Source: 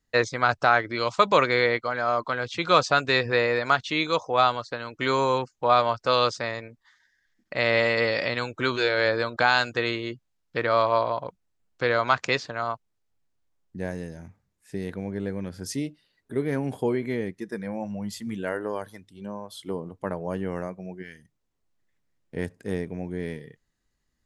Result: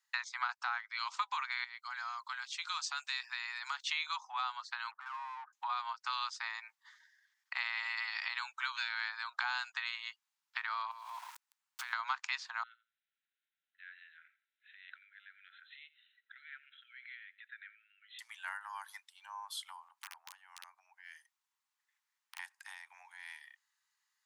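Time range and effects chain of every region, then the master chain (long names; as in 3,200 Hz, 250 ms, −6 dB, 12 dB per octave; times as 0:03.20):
0:01.64–0:03.87: first-order pre-emphasis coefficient 0.8 + downward compressor 2.5 to 1, threshold −33 dBFS
0:04.91–0:05.53: Chebyshev low-pass with heavy ripple 1,700 Hz, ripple 3 dB + downward compressor 8 to 1, threshold −37 dBFS + mid-hump overdrive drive 22 dB, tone 1,000 Hz, clips at −30.5 dBFS
0:10.91–0:11.93: converter with a step at zero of −34 dBFS + downward compressor 5 to 1, threshold −36 dBFS
0:12.63–0:18.19: downward compressor 3 to 1, threshold −37 dBFS + linear-phase brick-wall band-pass 1,300–4,100 Hz + repeating echo 87 ms, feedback 17%, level −20 dB
0:19.88–0:22.39: downward compressor 4 to 1, threshold −44 dBFS + wrap-around overflow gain 34 dB
whole clip: downward compressor 6 to 1, threshold −31 dBFS; Butterworth high-pass 840 Hz 72 dB per octave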